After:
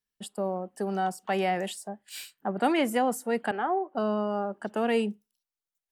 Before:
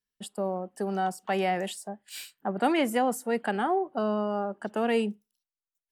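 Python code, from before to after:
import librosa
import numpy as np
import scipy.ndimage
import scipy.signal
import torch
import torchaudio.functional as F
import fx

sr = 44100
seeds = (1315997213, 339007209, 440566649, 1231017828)

y = fx.bandpass_edges(x, sr, low_hz=360.0, high_hz=2300.0, at=(3.51, 3.95))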